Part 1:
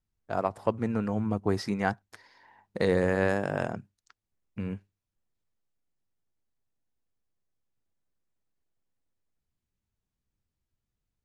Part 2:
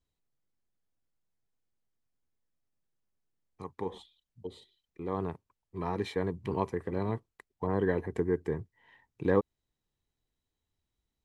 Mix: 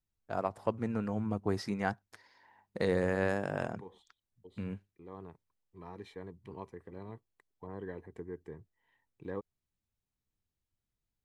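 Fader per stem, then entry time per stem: -5.0 dB, -14.0 dB; 0.00 s, 0.00 s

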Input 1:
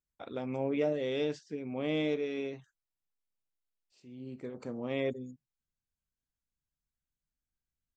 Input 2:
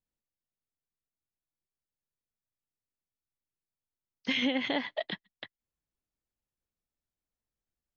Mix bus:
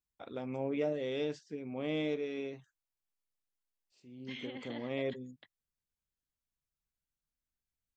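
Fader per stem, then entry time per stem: -3.0 dB, -16.0 dB; 0.00 s, 0.00 s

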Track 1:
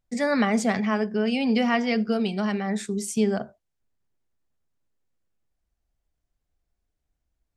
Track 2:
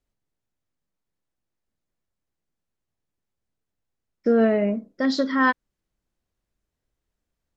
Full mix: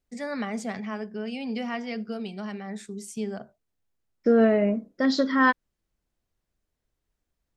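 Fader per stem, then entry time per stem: -9.0 dB, -0.5 dB; 0.00 s, 0.00 s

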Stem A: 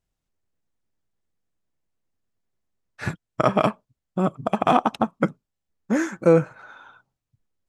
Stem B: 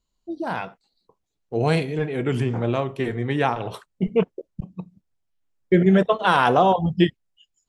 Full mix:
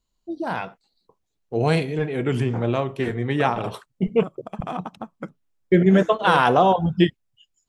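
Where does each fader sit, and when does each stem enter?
-12.5 dB, +0.5 dB; 0.00 s, 0.00 s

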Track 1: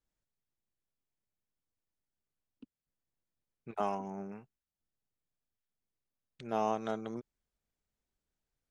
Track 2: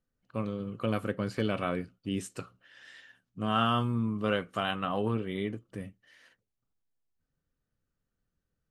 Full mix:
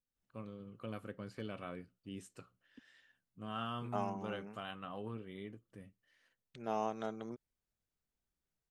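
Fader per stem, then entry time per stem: -4.5 dB, -14.0 dB; 0.15 s, 0.00 s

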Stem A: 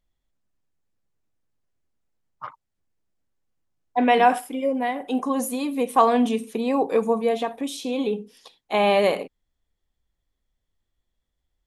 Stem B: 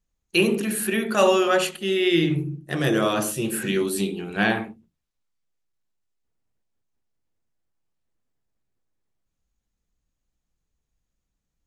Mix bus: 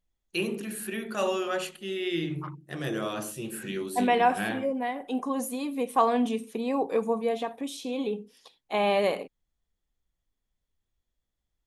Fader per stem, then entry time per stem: -5.5 dB, -10.0 dB; 0.00 s, 0.00 s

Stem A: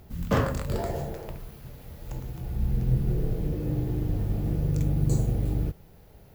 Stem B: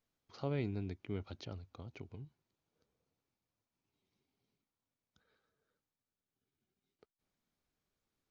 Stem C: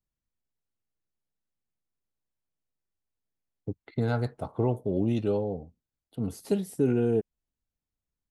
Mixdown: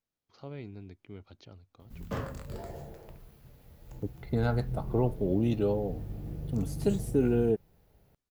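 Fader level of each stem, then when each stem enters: -11.5 dB, -5.5 dB, -1.0 dB; 1.80 s, 0.00 s, 0.35 s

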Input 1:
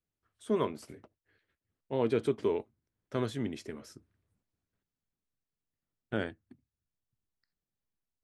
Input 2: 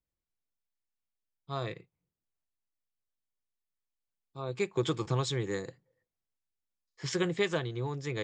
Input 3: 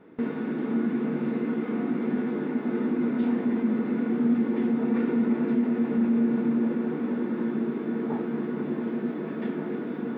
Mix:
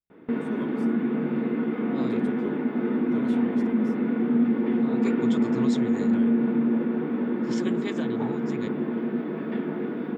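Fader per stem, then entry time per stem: -8.5 dB, -5.0 dB, +1.5 dB; 0.00 s, 0.45 s, 0.10 s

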